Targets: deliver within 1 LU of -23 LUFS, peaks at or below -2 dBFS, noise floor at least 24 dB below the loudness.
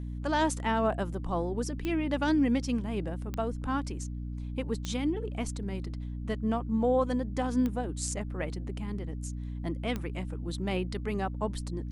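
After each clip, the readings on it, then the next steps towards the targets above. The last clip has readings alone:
clicks 5; hum 60 Hz; harmonics up to 300 Hz; hum level -34 dBFS; loudness -32.0 LUFS; peak -16.0 dBFS; loudness target -23.0 LUFS
-> de-click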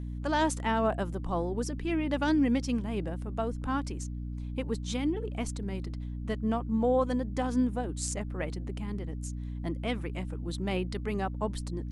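clicks 0; hum 60 Hz; harmonics up to 300 Hz; hum level -34 dBFS
-> de-hum 60 Hz, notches 5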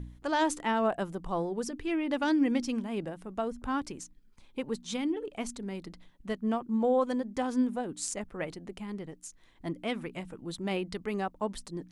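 hum none; loudness -32.5 LUFS; peak -16.5 dBFS; loudness target -23.0 LUFS
-> gain +9.5 dB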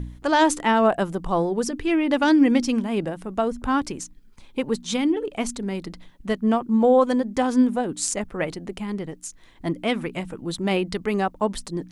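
loudness -23.0 LUFS; peak -7.0 dBFS; noise floor -49 dBFS

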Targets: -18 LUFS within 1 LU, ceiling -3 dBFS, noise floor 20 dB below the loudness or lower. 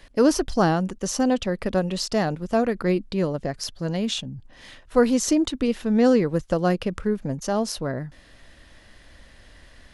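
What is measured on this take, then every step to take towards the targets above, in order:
loudness -23.5 LUFS; peak -7.0 dBFS; loudness target -18.0 LUFS
-> gain +5.5 dB; limiter -3 dBFS

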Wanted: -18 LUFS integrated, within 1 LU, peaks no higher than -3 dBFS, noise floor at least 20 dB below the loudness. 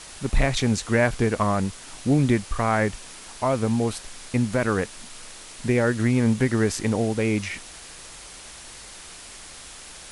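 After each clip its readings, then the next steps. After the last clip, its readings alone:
noise floor -43 dBFS; noise floor target -44 dBFS; loudness -24.0 LUFS; peak -7.5 dBFS; loudness target -18.0 LUFS
-> denoiser 6 dB, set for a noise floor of -43 dBFS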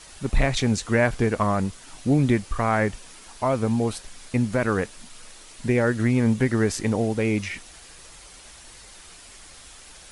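noise floor -47 dBFS; loudness -24.0 LUFS; peak -8.0 dBFS; loudness target -18.0 LUFS
-> gain +6 dB; limiter -3 dBFS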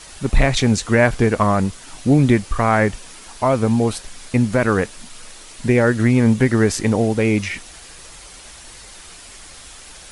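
loudness -18.0 LUFS; peak -3.0 dBFS; noise floor -41 dBFS

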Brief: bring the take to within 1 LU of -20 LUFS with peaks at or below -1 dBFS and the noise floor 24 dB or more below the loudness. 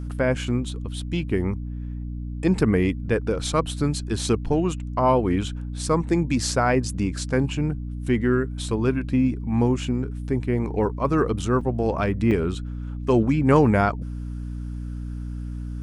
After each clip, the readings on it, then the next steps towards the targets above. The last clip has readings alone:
dropouts 2; longest dropout 4.1 ms; hum 60 Hz; harmonics up to 300 Hz; hum level -29 dBFS; loudness -24.0 LUFS; peak -4.0 dBFS; loudness target -20.0 LUFS
-> interpolate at 11.61/12.31, 4.1 ms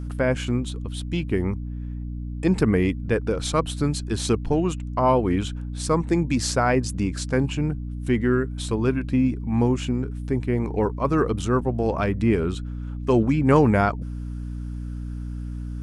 dropouts 0; hum 60 Hz; harmonics up to 300 Hz; hum level -29 dBFS
-> notches 60/120/180/240/300 Hz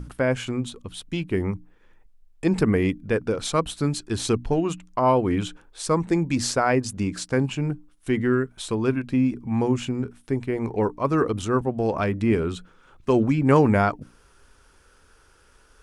hum none; loudness -24.0 LUFS; peak -4.0 dBFS; loudness target -20.0 LUFS
-> gain +4 dB; limiter -1 dBFS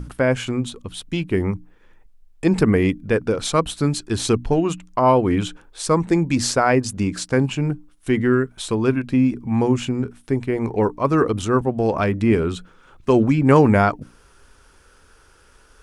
loudness -20.0 LUFS; peak -1.0 dBFS; noise floor -53 dBFS

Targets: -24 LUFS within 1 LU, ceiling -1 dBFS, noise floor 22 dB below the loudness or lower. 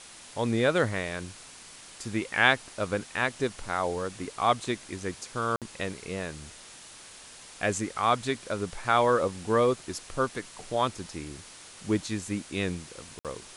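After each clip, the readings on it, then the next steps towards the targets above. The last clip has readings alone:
dropouts 2; longest dropout 57 ms; noise floor -49 dBFS; noise floor target -51 dBFS; loudness -29.0 LUFS; peak -4.5 dBFS; loudness target -24.0 LUFS
-> interpolate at 5.56/13.19, 57 ms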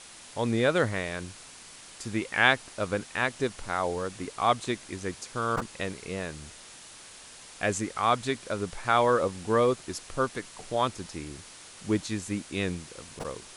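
dropouts 0; noise floor -48 dBFS; noise floor target -51 dBFS
-> denoiser 6 dB, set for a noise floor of -48 dBFS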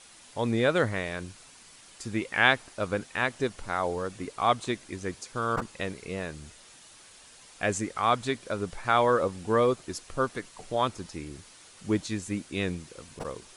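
noise floor -53 dBFS; loudness -29.0 LUFS; peak -4.5 dBFS; loudness target -24.0 LUFS
-> gain +5 dB; limiter -1 dBFS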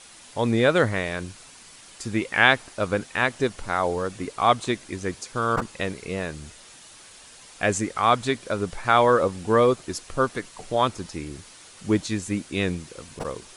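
loudness -24.0 LUFS; peak -1.0 dBFS; noise floor -48 dBFS

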